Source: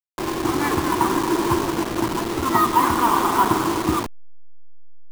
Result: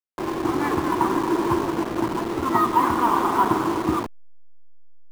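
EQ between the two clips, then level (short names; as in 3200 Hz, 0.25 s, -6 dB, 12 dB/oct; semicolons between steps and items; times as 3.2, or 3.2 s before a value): low shelf 110 Hz -7 dB; high shelf 2400 Hz -10.5 dB; 0.0 dB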